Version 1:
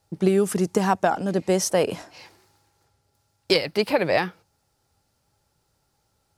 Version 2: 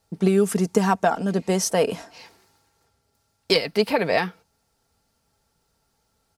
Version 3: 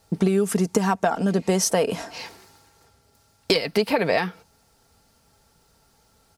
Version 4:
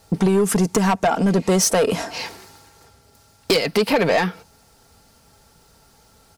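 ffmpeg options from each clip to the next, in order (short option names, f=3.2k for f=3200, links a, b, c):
-af "aecho=1:1:4.4:0.44"
-af "acompressor=threshold=-28dB:ratio=4,volume=9dB"
-af "asoftclip=type=tanh:threshold=-18.5dB,volume=7dB"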